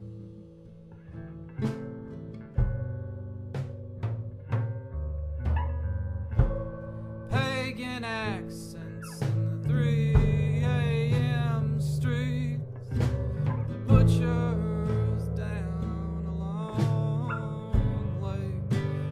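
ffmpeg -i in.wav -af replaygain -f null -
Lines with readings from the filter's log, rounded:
track_gain = +12.3 dB
track_peak = 0.272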